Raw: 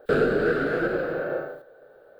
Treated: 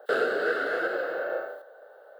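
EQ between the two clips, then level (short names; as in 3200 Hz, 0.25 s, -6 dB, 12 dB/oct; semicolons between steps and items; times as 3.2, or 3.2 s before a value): resonant high-pass 690 Hz, resonance Q 1.5; dynamic EQ 900 Hz, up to -6 dB, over -40 dBFS, Q 1; Butterworth band-stop 2400 Hz, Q 7.4; +1.5 dB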